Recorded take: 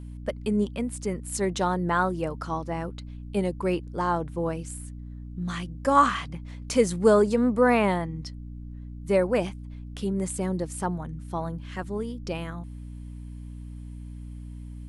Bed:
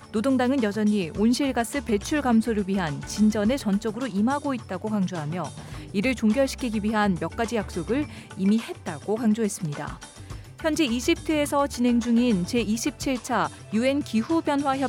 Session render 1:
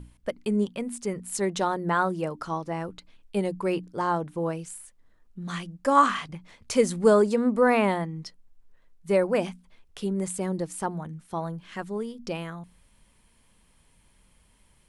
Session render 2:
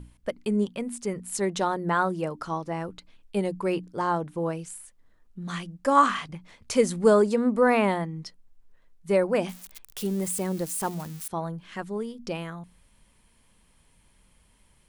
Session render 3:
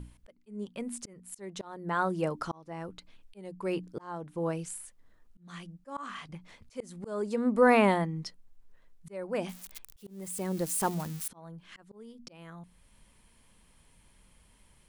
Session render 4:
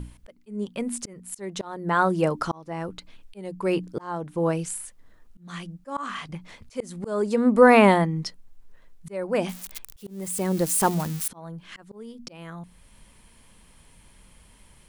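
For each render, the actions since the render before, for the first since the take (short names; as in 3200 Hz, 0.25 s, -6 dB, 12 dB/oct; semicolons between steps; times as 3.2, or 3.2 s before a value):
notches 60/120/180/240/300 Hz
9.49–11.28 switching spikes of -30 dBFS
auto swell 0.672 s
gain +8 dB; limiter -3 dBFS, peak gain reduction 1.5 dB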